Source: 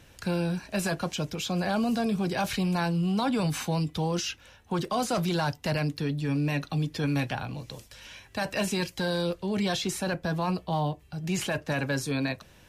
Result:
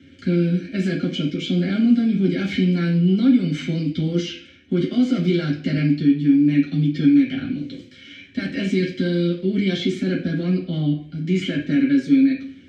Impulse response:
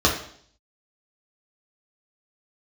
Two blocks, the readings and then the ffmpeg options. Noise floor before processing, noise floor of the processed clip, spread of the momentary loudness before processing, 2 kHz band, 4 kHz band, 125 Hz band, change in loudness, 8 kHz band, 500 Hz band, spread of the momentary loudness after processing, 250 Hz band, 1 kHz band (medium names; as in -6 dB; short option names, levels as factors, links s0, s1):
-56 dBFS, -46 dBFS, 7 LU, +2.0 dB, +3.0 dB, +7.0 dB, +9.0 dB, no reading, +4.0 dB, 9 LU, +12.0 dB, under -10 dB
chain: -filter_complex "[0:a]asplit=3[s0][s1][s2];[s0]bandpass=f=270:t=q:w=8,volume=1[s3];[s1]bandpass=f=2290:t=q:w=8,volume=0.501[s4];[s2]bandpass=f=3010:t=q:w=8,volume=0.355[s5];[s3][s4][s5]amix=inputs=3:normalize=0,acompressor=threshold=0.0126:ratio=2[s6];[1:a]atrim=start_sample=2205,asetrate=52920,aresample=44100[s7];[s6][s7]afir=irnorm=-1:irlink=0,volume=1.41"